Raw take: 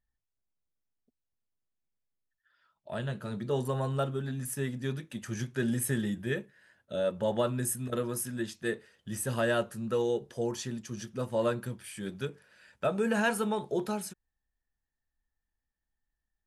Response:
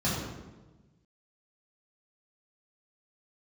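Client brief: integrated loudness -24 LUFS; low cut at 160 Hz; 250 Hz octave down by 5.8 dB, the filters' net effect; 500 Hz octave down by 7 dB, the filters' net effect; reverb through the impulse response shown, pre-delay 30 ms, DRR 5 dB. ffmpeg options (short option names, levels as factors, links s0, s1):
-filter_complex "[0:a]highpass=160,equalizer=f=250:t=o:g=-4,equalizer=f=500:t=o:g=-7.5,asplit=2[s0][s1];[1:a]atrim=start_sample=2205,adelay=30[s2];[s1][s2]afir=irnorm=-1:irlink=0,volume=0.168[s3];[s0][s3]amix=inputs=2:normalize=0,volume=2.99"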